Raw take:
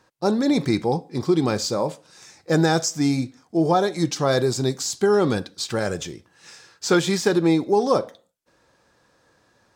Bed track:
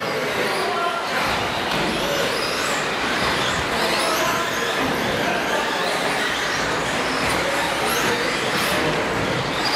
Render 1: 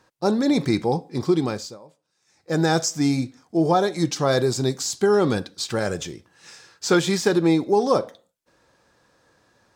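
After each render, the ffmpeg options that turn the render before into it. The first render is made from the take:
-filter_complex "[0:a]asplit=3[s0][s1][s2];[s0]atrim=end=1.79,asetpts=PTS-STARTPTS,afade=t=out:st=1.31:d=0.48:silence=0.0707946[s3];[s1]atrim=start=1.79:end=2.25,asetpts=PTS-STARTPTS,volume=0.0708[s4];[s2]atrim=start=2.25,asetpts=PTS-STARTPTS,afade=t=in:d=0.48:silence=0.0707946[s5];[s3][s4][s5]concat=n=3:v=0:a=1"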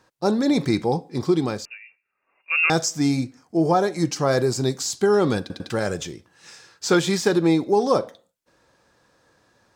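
-filter_complex "[0:a]asettb=1/sr,asplit=3[s0][s1][s2];[s0]atrim=end=1.654[s3];[s1]atrim=start=1.65:end=2.7,asetpts=PTS-STARTPTS,afade=t=in:d=0.004:c=qsin,afade=t=out:st=1.046:d=0.004:c=qsin,lowpass=f=2500:t=q:w=0.5098,lowpass=f=2500:t=q:w=0.6013,lowpass=f=2500:t=q:w=0.9,lowpass=f=2500:t=q:w=2.563,afreqshift=-2900[s4];[s2]atrim=start=2.696[s5];[s3][s4]acrossfade=d=0.004:c1=hsin:c2=qsin[s6];[s6][s5]acrossfade=d=0.004:c1=qsin:c2=hsin,asettb=1/sr,asplit=3[s7][s8][s9];[s7]atrim=end=3.244[s10];[s8]atrim=start=3.24:end=4.62,asetpts=PTS-STARTPTS,afade=t=in:d=0.004:c=qsin,afade=t=out:st=1.376:d=0.004:c=qsin,equalizer=f=3600:w=6.3:g=-10[s11];[s9]atrim=start=4.616[s12];[s10][s11]acrossfade=d=0.004:c1=hsin:c2=qsin[s13];[s13][s12]acrossfade=d=0.004:c1=qsin:c2=hsin,asplit=4[s14][s15][s16][s17];[s14]atrim=end=5.502[s18];[s15]atrim=start=5.398:end=5.502[s19];[s16]atrim=start=5.398:end=5.502[s20];[s17]atrim=start=5.698[s21];[s18][s19]acrossfade=d=0.004:c1=hsin:c2=hsin[s22];[s22][s20]acrossfade=d=0.004:c1=hsin:c2=hsin[s23];[s23][s21]acrossfade=d=0.004:c1=hsin:c2=hsin"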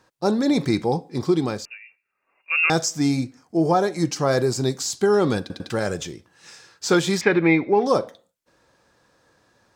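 -filter_complex "[0:a]asettb=1/sr,asplit=3[s0][s1][s2];[s0]atrim=end=7.214[s3];[s1]atrim=start=7.21:end=7.86,asetpts=PTS-STARTPTS,afade=t=in:d=0.004:c=qsin,afade=t=out:st=0.646:d=0.004:c=qsin,lowpass=f=2200:t=q:w=6.5[s4];[s2]atrim=start=7.856[s5];[s3][s4]acrossfade=d=0.004:c1=hsin:c2=qsin[s6];[s6][s5]acrossfade=d=0.004:c1=qsin:c2=hsin"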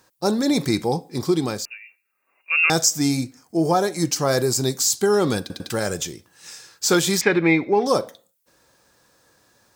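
-af "aemphasis=mode=production:type=50fm"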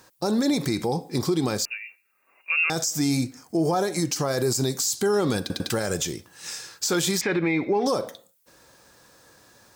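-filter_complex "[0:a]asplit=2[s0][s1];[s1]acompressor=threshold=0.0398:ratio=6,volume=0.75[s2];[s0][s2]amix=inputs=2:normalize=0,alimiter=limit=0.178:level=0:latency=1:release=77"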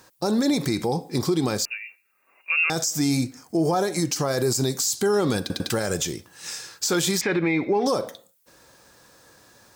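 -af "volume=1.12"

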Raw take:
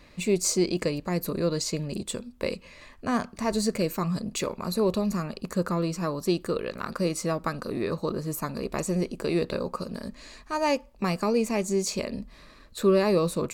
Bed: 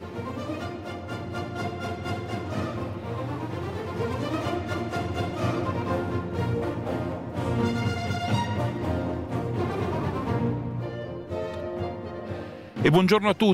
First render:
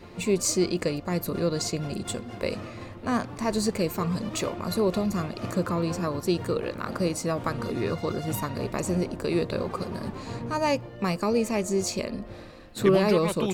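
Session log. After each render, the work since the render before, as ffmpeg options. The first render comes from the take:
-filter_complex "[1:a]volume=0.355[s0];[0:a][s0]amix=inputs=2:normalize=0"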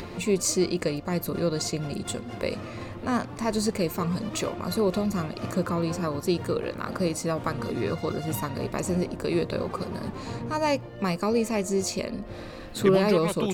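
-af "acompressor=mode=upward:threshold=0.0316:ratio=2.5"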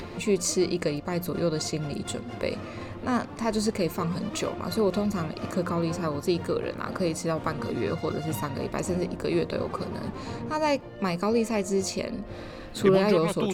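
-af "highshelf=f=9400:g=-6,bandreject=f=60:t=h:w=6,bandreject=f=120:t=h:w=6,bandreject=f=180:t=h:w=6"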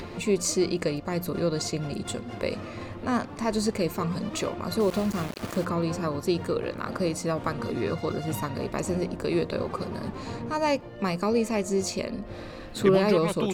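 -filter_complex "[0:a]asettb=1/sr,asplit=3[s0][s1][s2];[s0]atrim=end=4.804[s3];[s1]atrim=start=4.8:end=5.65,asetpts=PTS-STARTPTS,afade=t=in:d=0.004:c=qsin,afade=t=out:st=0.846:d=0.004:c=qsin,aeval=exprs='val(0)*gte(abs(val(0)),0.0211)':c=same[s4];[s2]atrim=start=5.646[s5];[s3][s4]acrossfade=d=0.004:c1=hsin:c2=qsin[s6];[s6][s5]acrossfade=d=0.004:c1=qsin:c2=hsin"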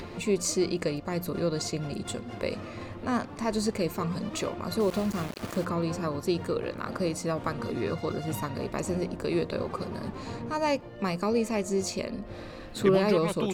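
-af "volume=0.794"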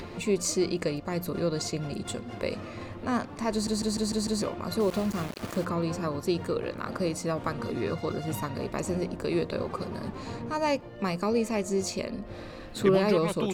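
-filter_complex "[0:a]asplit=7[s0][s1][s2][s3][s4][s5][s6];[s0]atrim=end=3.672[s7];[s1]atrim=start=3.518:end=3.672[s8];[s2]atrim=start=3.518:end=3.672[s9];[s3]atrim=start=3.518:end=3.672[s10];[s4]atrim=start=3.518:end=3.672[s11];[s5]atrim=start=3.518:end=3.672[s12];[s6]atrim=start=4.418[s13];[s7][s8]acrossfade=d=0.004:c1=hsin:c2=hsin[s14];[s14][s9]acrossfade=d=0.004:c1=hsin:c2=hsin[s15];[s15][s10]acrossfade=d=0.004:c1=hsin:c2=hsin[s16];[s16][s11]acrossfade=d=0.004:c1=hsin:c2=hsin[s17];[s17][s12]acrossfade=d=0.004:c1=hsin:c2=hsin[s18];[s18][s13]acrossfade=d=0.004:c1=hsin:c2=hsin"

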